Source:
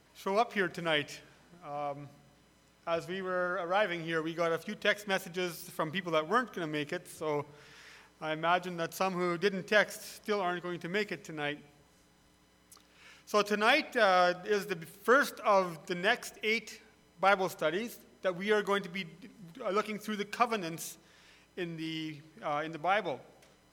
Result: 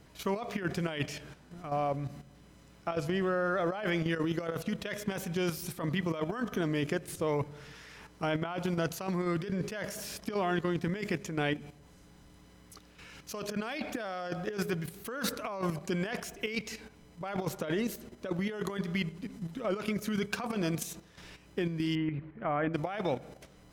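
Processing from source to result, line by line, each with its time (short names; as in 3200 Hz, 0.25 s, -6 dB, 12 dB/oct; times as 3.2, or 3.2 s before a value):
21.95–22.74 LPF 2300 Hz 24 dB/oct
whole clip: level quantiser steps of 10 dB; low shelf 300 Hz +9.5 dB; negative-ratio compressor -37 dBFS, ratio -1; gain +4.5 dB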